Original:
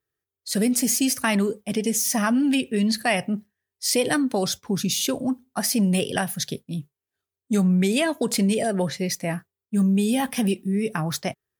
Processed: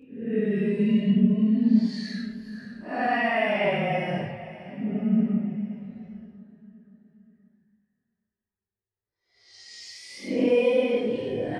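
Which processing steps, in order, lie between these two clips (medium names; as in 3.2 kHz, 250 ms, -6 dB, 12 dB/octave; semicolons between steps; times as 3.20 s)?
level-controlled noise filter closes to 1.4 kHz, open at -20 dBFS; low-pass 2.1 kHz 12 dB/octave; bass shelf 100 Hz +7.5 dB; reverse; upward compressor, threshold -33 dBFS; reverse; Paulstretch 8.2×, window 0.05 s, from 2.69 s; chorus voices 6, 0.2 Hz, delay 23 ms, depth 4.4 ms; feedback delay 525 ms, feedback 49%, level -16.5 dB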